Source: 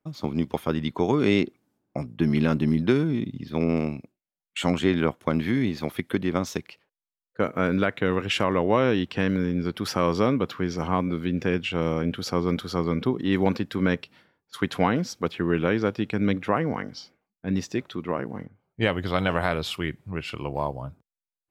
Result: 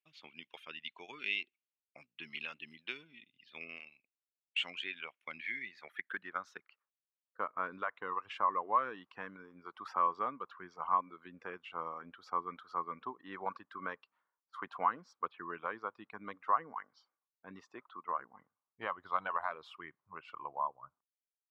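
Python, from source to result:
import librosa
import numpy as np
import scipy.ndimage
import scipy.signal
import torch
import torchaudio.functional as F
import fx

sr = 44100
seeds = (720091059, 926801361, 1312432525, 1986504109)

y = fx.dereverb_blind(x, sr, rt60_s=1.5)
y = fx.filter_sweep_bandpass(y, sr, from_hz=2700.0, to_hz=1100.0, start_s=5.02, end_s=7.04, q=5.3)
y = F.gain(torch.from_numpy(y), 1.0).numpy()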